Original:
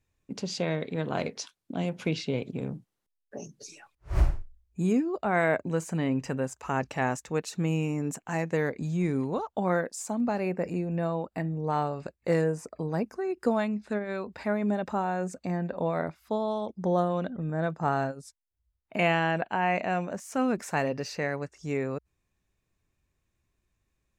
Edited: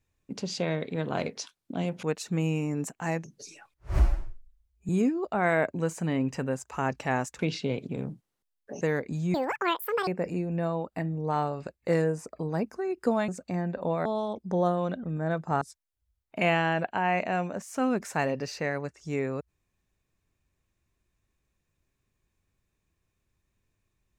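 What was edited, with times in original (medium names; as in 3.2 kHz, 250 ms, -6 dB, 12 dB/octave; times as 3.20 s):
2.03–3.45 s: swap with 7.30–8.51 s
4.20–4.80 s: stretch 1.5×
9.04–10.47 s: speed 195%
13.68–15.24 s: delete
16.01–16.38 s: delete
17.94–18.19 s: delete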